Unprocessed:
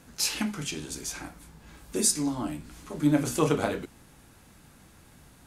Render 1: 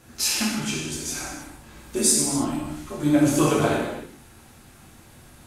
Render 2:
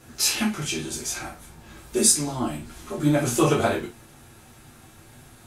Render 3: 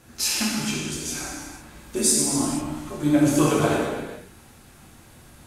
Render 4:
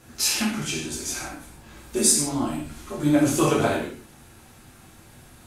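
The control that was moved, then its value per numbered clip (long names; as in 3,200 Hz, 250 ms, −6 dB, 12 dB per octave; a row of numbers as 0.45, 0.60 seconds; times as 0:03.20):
reverb whose tail is shaped and stops, gate: 350, 90, 520, 200 milliseconds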